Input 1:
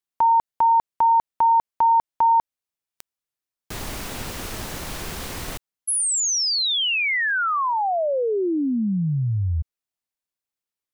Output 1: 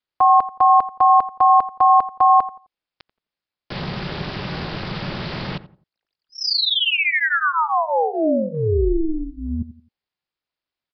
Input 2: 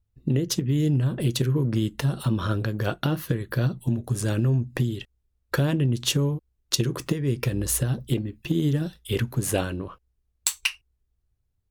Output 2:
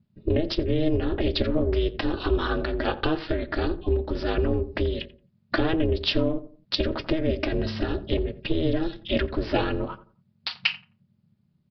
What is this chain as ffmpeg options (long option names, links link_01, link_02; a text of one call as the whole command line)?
ffmpeg -i in.wav -filter_complex "[0:a]aecho=1:1:4.5:0.98,asplit=2[link_01][link_02];[link_02]acompressor=threshold=-27dB:ratio=5:attack=0.12:release=47:knee=1:detection=peak,volume=0dB[link_03];[link_01][link_03]amix=inputs=2:normalize=0,asplit=2[link_04][link_05];[link_05]adelay=87,lowpass=frequency=1100:poles=1,volume=-14dB,asplit=2[link_06][link_07];[link_07]adelay=87,lowpass=frequency=1100:poles=1,volume=0.32,asplit=2[link_08][link_09];[link_09]adelay=87,lowpass=frequency=1100:poles=1,volume=0.32[link_10];[link_04][link_06][link_08][link_10]amix=inputs=4:normalize=0,aeval=exprs='val(0)*sin(2*PI*160*n/s)':channel_layout=same,aresample=11025,aresample=44100" out.wav